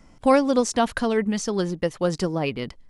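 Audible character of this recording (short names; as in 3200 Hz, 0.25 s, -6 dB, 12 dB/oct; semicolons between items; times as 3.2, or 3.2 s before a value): noise floor -52 dBFS; spectral tilt -5.0 dB/oct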